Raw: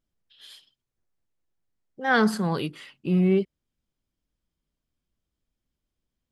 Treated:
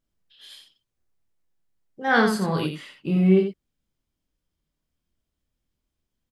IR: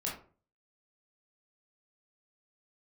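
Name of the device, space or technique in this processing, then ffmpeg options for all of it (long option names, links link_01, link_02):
slapback doubling: -filter_complex "[0:a]asplit=3[link_01][link_02][link_03];[link_02]adelay=26,volume=-4dB[link_04];[link_03]adelay=86,volume=-6dB[link_05];[link_01][link_04][link_05]amix=inputs=3:normalize=0"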